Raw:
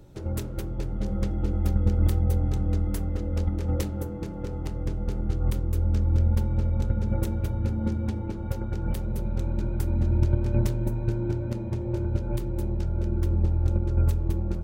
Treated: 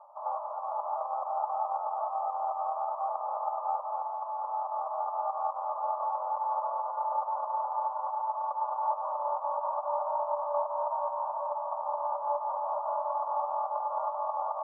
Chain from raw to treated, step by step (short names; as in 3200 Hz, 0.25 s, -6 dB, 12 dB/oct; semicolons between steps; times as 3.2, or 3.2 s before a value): spectral whitening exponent 0.3; compressor 3:1, threshold -25 dBFS, peak gain reduction 7.5 dB; limiter -18 dBFS, peak gain reduction 6.5 dB; Chebyshev band-pass 590–1200 Hz, order 5; gain +7 dB